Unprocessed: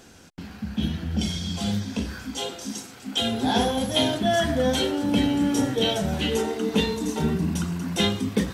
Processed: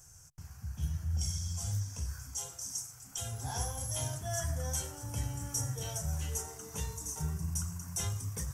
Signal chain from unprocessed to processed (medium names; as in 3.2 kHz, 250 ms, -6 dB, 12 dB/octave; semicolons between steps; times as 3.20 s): FFT filter 140 Hz 0 dB, 210 Hz -29 dB, 1.1 kHz -10 dB, 4 kHz -23 dB, 5.8 kHz +3 dB; trim -2.5 dB